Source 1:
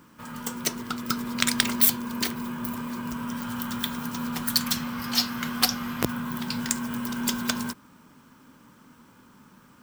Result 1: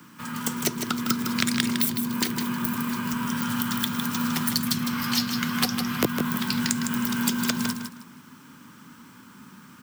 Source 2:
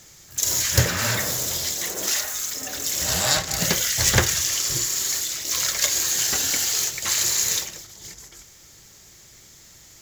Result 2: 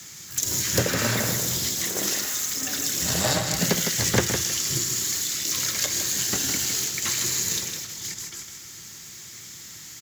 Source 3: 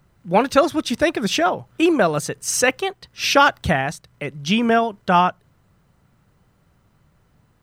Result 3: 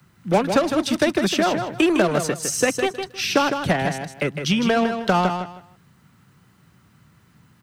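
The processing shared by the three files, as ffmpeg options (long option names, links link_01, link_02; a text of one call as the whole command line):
ffmpeg -i in.wav -filter_complex "[0:a]highpass=120,acrossover=split=190|600[link_01][link_02][link_03];[link_01]acompressor=threshold=-38dB:ratio=4[link_04];[link_02]acompressor=threshold=-30dB:ratio=4[link_05];[link_03]acompressor=threshold=-33dB:ratio=4[link_06];[link_04][link_05][link_06]amix=inputs=3:normalize=0,aeval=exprs='0.282*(cos(1*acos(clip(val(0)/0.282,-1,1)))-cos(1*PI/2))+0.00891*(cos(7*acos(clip(val(0)/0.282,-1,1)))-cos(7*PI/2))':channel_layout=same,acrossover=split=390|850|3200[link_07][link_08][link_09][link_10];[link_08]acrusher=bits=5:mix=0:aa=0.5[link_11];[link_07][link_11][link_09][link_10]amix=inputs=4:normalize=0,aecho=1:1:157|314|471:0.447|0.0983|0.0216,volume=9dB" out.wav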